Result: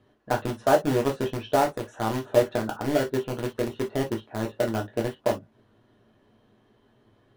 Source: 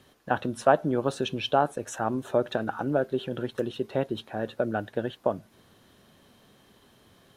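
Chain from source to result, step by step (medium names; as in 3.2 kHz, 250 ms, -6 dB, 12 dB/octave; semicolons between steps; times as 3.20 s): low-pass 1.1 kHz 6 dB/octave; in parallel at -3.5 dB: bit crusher 4-bit; on the sum: gated-style reverb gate 80 ms falling, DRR 0 dB; trim -4.5 dB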